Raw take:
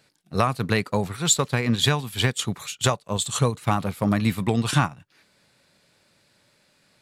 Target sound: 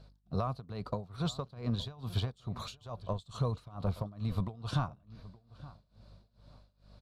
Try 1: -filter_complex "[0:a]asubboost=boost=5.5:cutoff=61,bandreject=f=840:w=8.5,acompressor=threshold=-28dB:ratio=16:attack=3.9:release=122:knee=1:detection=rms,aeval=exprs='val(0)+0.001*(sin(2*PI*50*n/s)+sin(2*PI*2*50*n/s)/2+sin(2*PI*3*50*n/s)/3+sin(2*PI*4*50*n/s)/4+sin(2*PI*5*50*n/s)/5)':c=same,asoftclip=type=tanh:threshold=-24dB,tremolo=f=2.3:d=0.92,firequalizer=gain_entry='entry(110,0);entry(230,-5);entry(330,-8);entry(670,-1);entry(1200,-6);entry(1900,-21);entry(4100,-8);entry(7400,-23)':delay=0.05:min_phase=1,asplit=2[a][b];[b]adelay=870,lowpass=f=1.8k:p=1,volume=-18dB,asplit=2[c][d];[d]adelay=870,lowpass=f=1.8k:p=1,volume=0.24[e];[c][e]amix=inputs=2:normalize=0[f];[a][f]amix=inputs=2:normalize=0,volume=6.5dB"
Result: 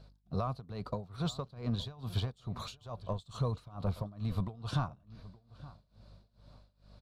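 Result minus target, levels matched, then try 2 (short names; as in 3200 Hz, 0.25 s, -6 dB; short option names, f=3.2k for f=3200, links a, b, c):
soft clip: distortion +13 dB
-filter_complex "[0:a]asubboost=boost=5.5:cutoff=61,bandreject=f=840:w=8.5,acompressor=threshold=-28dB:ratio=16:attack=3.9:release=122:knee=1:detection=rms,aeval=exprs='val(0)+0.001*(sin(2*PI*50*n/s)+sin(2*PI*2*50*n/s)/2+sin(2*PI*3*50*n/s)/3+sin(2*PI*4*50*n/s)/4+sin(2*PI*5*50*n/s)/5)':c=same,asoftclip=type=tanh:threshold=-16dB,tremolo=f=2.3:d=0.92,firequalizer=gain_entry='entry(110,0);entry(230,-5);entry(330,-8);entry(670,-1);entry(1200,-6);entry(1900,-21);entry(4100,-8);entry(7400,-23)':delay=0.05:min_phase=1,asplit=2[a][b];[b]adelay=870,lowpass=f=1.8k:p=1,volume=-18dB,asplit=2[c][d];[d]adelay=870,lowpass=f=1.8k:p=1,volume=0.24[e];[c][e]amix=inputs=2:normalize=0[f];[a][f]amix=inputs=2:normalize=0,volume=6.5dB"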